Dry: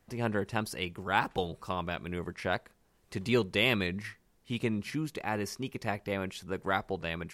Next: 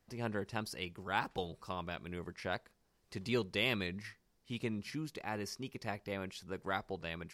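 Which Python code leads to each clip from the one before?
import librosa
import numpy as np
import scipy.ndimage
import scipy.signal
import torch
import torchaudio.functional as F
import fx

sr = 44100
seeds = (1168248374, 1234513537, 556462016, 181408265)

y = fx.peak_eq(x, sr, hz=4900.0, db=5.5, octaves=0.58)
y = F.gain(torch.from_numpy(y), -7.0).numpy()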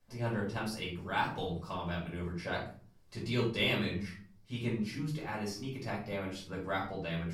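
y = fx.room_shoebox(x, sr, seeds[0], volume_m3=350.0, walls='furnished', distance_m=5.5)
y = F.gain(torch.from_numpy(y), -6.0).numpy()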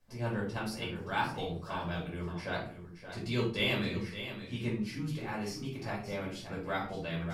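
y = x + 10.0 ** (-10.5 / 20.0) * np.pad(x, (int(573 * sr / 1000.0), 0))[:len(x)]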